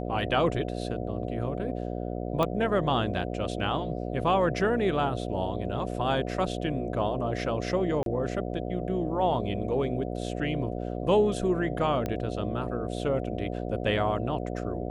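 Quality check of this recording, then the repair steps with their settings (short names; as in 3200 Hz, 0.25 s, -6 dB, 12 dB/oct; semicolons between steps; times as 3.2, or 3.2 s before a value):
buzz 60 Hz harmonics 12 -33 dBFS
2.43 pop -14 dBFS
8.03–8.06 gap 32 ms
12.06 pop -18 dBFS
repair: de-click; de-hum 60 Hz, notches 12; interpolate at 8.03, 32 ms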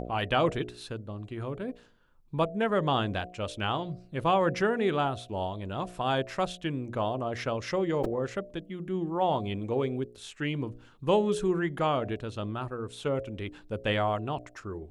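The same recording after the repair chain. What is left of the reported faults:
none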